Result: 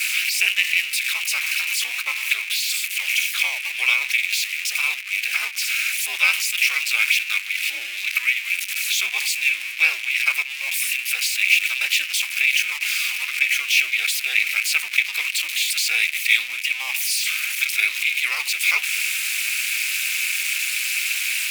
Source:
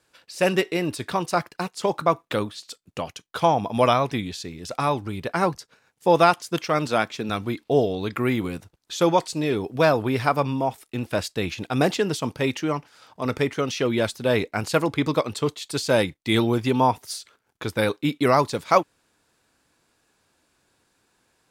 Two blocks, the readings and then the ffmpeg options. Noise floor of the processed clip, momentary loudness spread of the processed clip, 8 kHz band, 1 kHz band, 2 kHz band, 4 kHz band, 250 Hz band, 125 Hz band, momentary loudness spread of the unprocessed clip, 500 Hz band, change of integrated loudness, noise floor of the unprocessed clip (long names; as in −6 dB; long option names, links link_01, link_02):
−31 dBFS, 5 LU, +14.0 dB, −16.0 dB, +13.5 dB, +11.0 dB, below −35 dB, below −40 dB, 12 LU, below −30 dB, +4.0 dB, −70 dBFS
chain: -af "aeval=exprs='val(0)+0.5*0.1*sgn(val(0))':channel_layout=same,highpass=frequency=2400:width_type=q:width=11,aemphasis=mode=production:type=cd,afftdn=noise_reduction=12:noise_floor=-38,afreqshift=13,aeval=exprs='val(0)*sin(2*PI*130*n/s)':channel_layout=same,volume=-3dB"